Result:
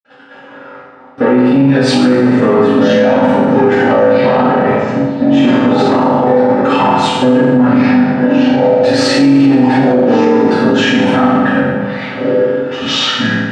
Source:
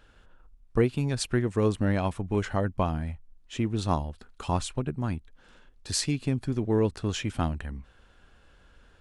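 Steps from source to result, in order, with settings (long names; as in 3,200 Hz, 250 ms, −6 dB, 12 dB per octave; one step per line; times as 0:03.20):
downward compressor 5 to 1, threshold −26 dBFS, peak gain reduction 8.5 dB
delay with pitch and tempo change per echo 162 ms, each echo −6 semitones, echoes 2, each echo −6 dB
leveller curve on the samples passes 3
low-pass filter 2,600 Hz 12 dB per octave
time stretch by overlap-add 1.5×, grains 47 ms
high-pass filter 200 Hz 24 dB per octave
convolution reverb RT60 1.3 s, pre-delay 46 ms
boost into a limiter +34.5 dB
level −1 dB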